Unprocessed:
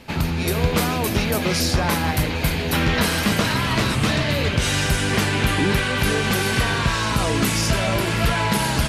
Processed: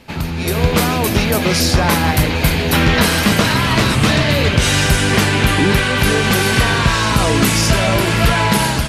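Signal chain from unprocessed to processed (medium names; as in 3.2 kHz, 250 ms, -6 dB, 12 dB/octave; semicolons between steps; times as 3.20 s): level rider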